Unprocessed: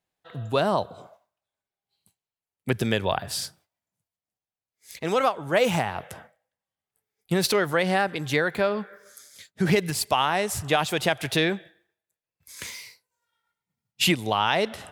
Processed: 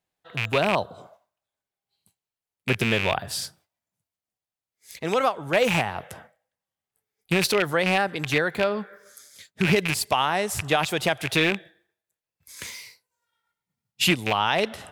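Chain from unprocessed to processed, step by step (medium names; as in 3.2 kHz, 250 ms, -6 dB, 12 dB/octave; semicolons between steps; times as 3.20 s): rattle on loud lows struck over -30 dBFS, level -13 dBFS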